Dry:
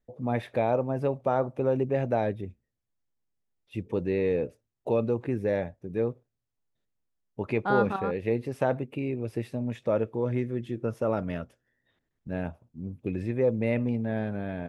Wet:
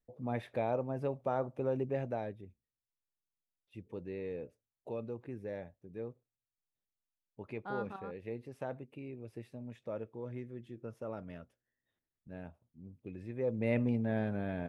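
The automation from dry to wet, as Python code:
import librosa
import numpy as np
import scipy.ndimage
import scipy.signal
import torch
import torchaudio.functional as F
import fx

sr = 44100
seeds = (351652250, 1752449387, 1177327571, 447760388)

y = fx.gain(x, sr, db=fx.line((1.94, -8.0), (2.39, -14.5), (13.22, -14.5), (13.76, -3.5)))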